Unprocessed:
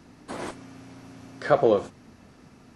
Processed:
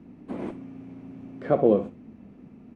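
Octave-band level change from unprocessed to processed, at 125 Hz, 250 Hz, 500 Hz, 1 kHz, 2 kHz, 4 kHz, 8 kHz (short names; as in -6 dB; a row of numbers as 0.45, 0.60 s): +2.0 dB, +4.5 dB, -0.5 dB, -5.0 dB, -10.5 dB, under -10 dB, n/a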